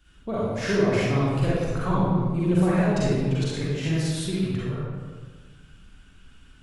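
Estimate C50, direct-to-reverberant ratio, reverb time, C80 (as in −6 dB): −5.0 dB, −8.5 dB, 1.6 s, −1.0 dB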